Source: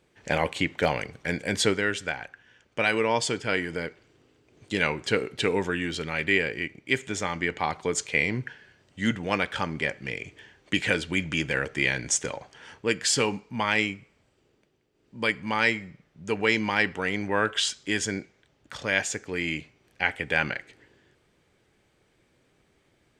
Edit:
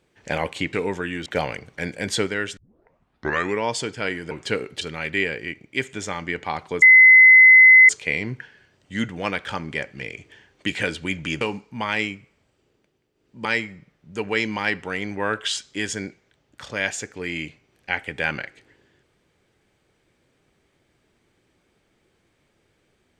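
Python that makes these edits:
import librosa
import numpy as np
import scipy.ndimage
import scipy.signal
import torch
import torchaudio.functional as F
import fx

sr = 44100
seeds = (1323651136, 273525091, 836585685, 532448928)

y = fx.edit(x, sr, fx.tape_start(start_s=2.04, length_s=1.05),
    fx.cut(start_s=3.78, length_s=1.14),
    fx.move(start_s=5.42, length_s=0.53, to_s=0.73),
    fx.insert_tone(at_s=7.96, length_s=1.07, hz=2040.0, db=-6.5),
    fx.cut(start_s=11.48, length_s=1.72),
    fx.cut(start_s=15.24, length_s=0.33), tone=tone)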